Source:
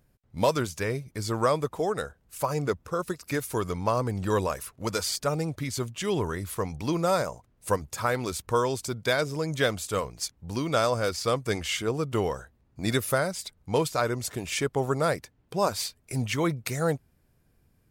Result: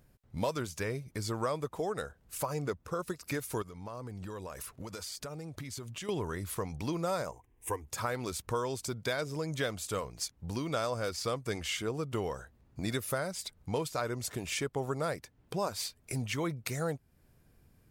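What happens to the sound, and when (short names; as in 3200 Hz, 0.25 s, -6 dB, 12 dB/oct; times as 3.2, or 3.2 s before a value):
3.62–6.09 compressor 10:1, threshold -39 dBFS
7.31–7.87 fixed phaser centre 900 Hz, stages 8
whole clip: compressor 2:1, threshold -40 dBFS; gain +2 dB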